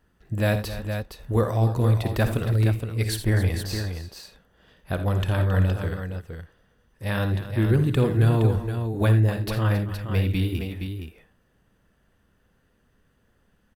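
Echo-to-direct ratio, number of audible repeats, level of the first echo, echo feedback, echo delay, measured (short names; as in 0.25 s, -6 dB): -4.5 dB, 3, -12.5 dB, no steady repeat, 54 ms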